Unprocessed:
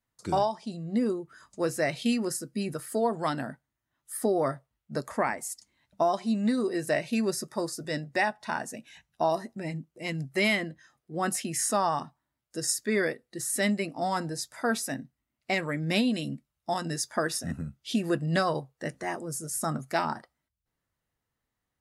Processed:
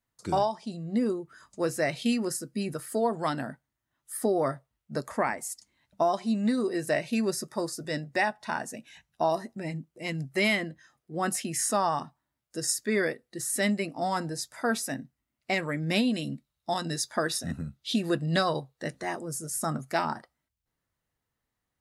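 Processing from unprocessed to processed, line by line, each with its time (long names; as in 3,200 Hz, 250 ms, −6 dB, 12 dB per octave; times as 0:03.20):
0:16.27–0:19.19: parametric band 3,900 Hz +8.5 dB 0.32 octaves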